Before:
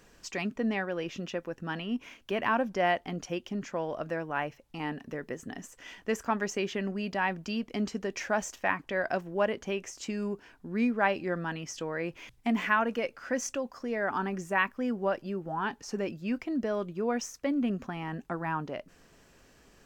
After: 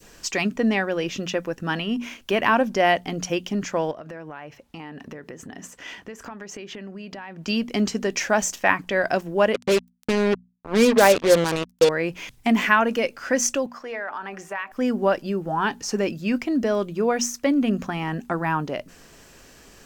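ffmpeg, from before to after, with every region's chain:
-filter_complex "[0:a]asettb=1/sr,asplit=3[a][b][c];[a]atrim=end=3.914[d];[b]atrim=start=3.91:end=7.48,asetpts=PTS-STARTPTS,afade=t=in:d=0.004:c=qsin,afade=t=out:st=3.566:d=0.004:c=qsin,highpass=49,highshelf=f=5.2k:g=-10,acompressor=threshold=-42dB:ratio=16:attack=3.2:release=140:knee=1:detection=peak[e];[c]atrim=start=7.476[f];[d][e]acrossfade=d=0.004:c1=hsin:c2=qsin[g];[g][f]acrossfade=d=0.004:c1=qsin:c2=hsin,asettb=1/sr,asplit=3[h][i][j];[h]atrim=end=9.544[k];[i]atrim=start=9.54:end=11.89,asetpts=PTS-STARTPTS,afade=t=in:d=0.004:c=qsin,afade=t=out:st=2.346:d=0.004:c=qsin,lowpass=f=3.9k:p=1,equalizer=f=500:t=o:w=0.44:g=14.5,acrusher=bits=4:mix=0:aa=0.5[l];[j]atrim=start=11.886[m];[k][l]acrossfade=d=0.004:c1=hsin:c2=qsin[n];[n][m]acrossfade=d=0.004:c1=qsin:c2=hsin,asettb=1/sr,asplit=3[o][p][q];[o]atrim=end=13.664[r];[p]atrim=start=13.66:end=14.72,asetpts=PTS-STARTPTS,afade=t=in:d=0.004:c=qsin,afade=t=out:st=1.056:d=0.004:c=qsin,acrossover=split=520 3400:gain=0.178 1 0.251[s][t][u];[s][t][u]amix=inputs=3:normalize=0,bandreject=f=76.37:t=h:w=4,bandreject=f=152.74:t=h:w=4,bandreject=f=229.11:t=h:w=4,bandreject=f=305.48:t=h:w=4,bandreject=f=381.85:t=h:w=4,bandreject=f=458.22:t=h:w=4,bandreject=f=534.59:t=h:w=4,bandreject=f=610.96:t=h:w=4,bandreject=f=687.33:t=h:w=4,bandreject=f=763.7:t=h:w=4,acompressor=threshold=-37dB:ratio=4:attack=3.2:release=140:knee=1:detection=peak[v];[q]atrim=start=14.716[w];[r][v]acrossfade=d=0.004:c1=hsin:c2=qsin[x];[x][w]acrossfade=d=0.004:c1=qsin:c2=hsin,highshelf=f=3.6k:g=6,bandreject=f=60:t=h:w=6,bandreject=f=120:t=h:w=6,bandreject=f=180:t=h:w=6,bandreject=f=240:t=h:w=6,adynamicequalizer=threshold=0.00891:dfrequency=1300:dqfactor=0.71:tfrequency=1300:tqfactor=0.71:attack=5:release=100:ratio=0.375:range=2:mode=cutabove:tftype=bell,volume=9dB"

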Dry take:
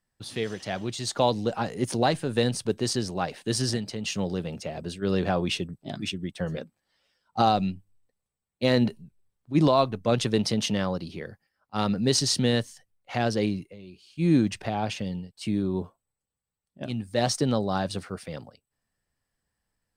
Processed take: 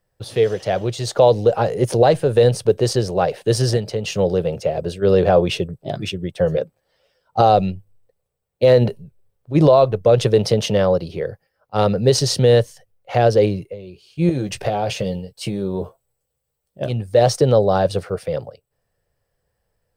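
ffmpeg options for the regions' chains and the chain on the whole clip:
-filter_complex "[0:a]asettb=1/sr,asplit=3[a][b][c];[a]atrim=end=14.294[d];[b]atrim=start=14.29:end=16.89,asetpts=PTS-STARTPTS,afade=t=in:d=0.004:c=qsin,afade=t=out:st=2.596:d=0.004:c=qsin,highshelf=f=3.8k:g=7,acompressor=threshold=-26dB:ratio=5:attack=3.2:release=140:knee=1:detection=peak,asplit=2[e][f];[f]adelay=15,volume=-7.5dB[g];[e][g]amix=inputs=2:normalize=0,atrim=end_sample=114660[h];[c]atrim=start=16.886[i];[d][h]acrossfade=d=0.004:c1=hsin:c2=qsin[j];[j][i]acrossfade=d=0.004:c1=qsin:c2=hsin,equalizer=f=125:t=o:w=1:g=4,equalizer=f=250:t=o:w=1:g=-12,equalizer=f=500:t=o:w=1:g=11,equalizer=f=1k:t=o:w=1:g=-4,equalizer=f=2k:t=o:w=1:g=-4,equalizer=f=4k:t=o:w=1:g=-4,equalizer=f=8k:t=o:w=1:g=-7,alimiter=level_in=12.5dB:limit=-1dB:release=50:level=0:latency=1,volume=-3dB"

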